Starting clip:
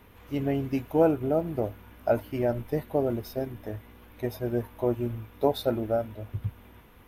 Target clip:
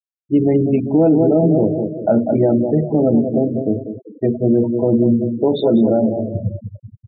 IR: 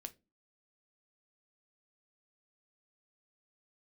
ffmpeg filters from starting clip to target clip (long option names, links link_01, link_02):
-filter_complex "[0:a]acontrast=83,flanger=delay=1.1:depth=1.3:regen=-77:speed=1:shape=triangular,highpass=frequency=110:width=0.5412,highpass=frequency=110:width=1.3066,equalizer=frequency=130:width_type=q:width=4:gain=-4,equalizer=frequency=1100:width_type=q:width=4:gain=-3,equalizer=frequency=1600:width_type=q:width=4:gain=-5,equalizer=frequency=4700:width_type=q:width=4:gain=-7,lowpass=frequency=6600:width=0.5412,lowpass=frequency=6600:width=1.3066,aecho=1:1:195|390|585|780|975:0.355|0.167|0.0784|0.0368|0.0173[link_01];[1:a]atrim=start_sample=2205,afade=type=out:start_time=0.26:duration=0.01,atrim=end_sample=11907[link_02];[link_01][link_02]afir=irnorm=-1:irlink=0,afftfilt=real='re*gte(hypot(re,im),0.0178)':imag='im*gte(hypot(re,im),0.0178)':win_size=1024:overlap=0.75,equalizer=frequency=220:width_type=o:width=2.1:gain=14,alimiter=level_in=14.5dB:limit=-1dB:release=50:level=0:latency=1,volume=-5dB"